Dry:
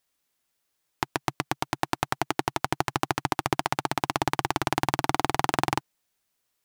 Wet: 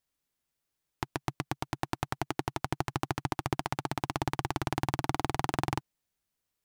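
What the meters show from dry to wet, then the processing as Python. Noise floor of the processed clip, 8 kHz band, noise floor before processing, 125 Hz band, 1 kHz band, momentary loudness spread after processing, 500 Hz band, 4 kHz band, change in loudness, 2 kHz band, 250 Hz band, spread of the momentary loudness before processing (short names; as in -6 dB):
-85 dBFS, -8.0 dB, -77 dBFS, -0.5 dB, -7.5 dB, 5 LU, -6.0 dB, -8.0 dB, -6.0 dB, -8.0 dB, -4.0 dB, 5 LU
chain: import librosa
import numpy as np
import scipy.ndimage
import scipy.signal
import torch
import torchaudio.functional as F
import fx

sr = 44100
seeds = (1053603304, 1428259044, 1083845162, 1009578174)

y = fx.low_shelf(x, sr, hz=230.0, db=10.0)
y = y * librosa.db_to_amplitude(-8.0)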